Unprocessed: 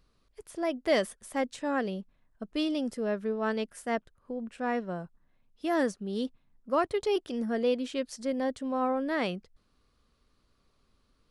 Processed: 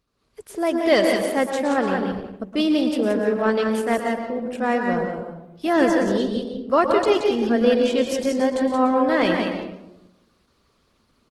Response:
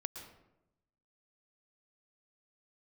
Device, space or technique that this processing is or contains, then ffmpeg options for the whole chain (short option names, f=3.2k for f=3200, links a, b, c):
far-field microphone of a smart speaker: -filter_complex "[0:a]asettb=1/sr,asplit=3[a][b][c];[a]atrim=end=5.734[d];[b]atrim=start=5.73:end=7.65,asetpts=PTS-STARTPTS,afade=t=in:d=0.004:c=qsin,afade=t=out:st=1.916:d=0.004:c=qsin,lowpass=8.4k[e];[c]atrim=start=7.646[f];[d][e]acrossfade=d=0.004:c1=hsin:c2=qsin[g];[g][f]acrossfade=d=0.004:c1=qsin:c2=hsin,aecho=1:1:176:0.562[h];[1:a]atrim=start_sample=2205[i];[h][i]afir=irnorm=-1:irlink=0,highpass=f=110:p=1,dynaudnorm=f=160:g=3:m=11.5dB" -ar 48000 -c:a libopus -b:a 16k